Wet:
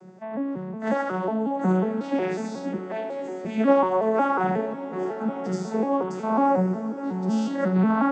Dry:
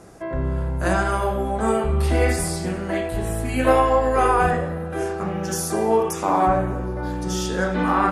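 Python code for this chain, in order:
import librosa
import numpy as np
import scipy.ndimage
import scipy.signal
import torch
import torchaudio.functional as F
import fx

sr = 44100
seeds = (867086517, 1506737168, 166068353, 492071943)

p1 = fx.vocoder_arp(x, sr, chord='minor triad', root=54, every_ms=182)
p2 = fx.ellip_highpass(p1, sr, hz=300.0, order=4, stop_db=40, at=(2.78, 3.45))
p3 = p2 + fx.echo_diffused(p2, sr, ms=1029, feedback_pct=47, wet_db=-15, dry=0)
y = p3 * 10.0 ** (-1.5 / 20.0)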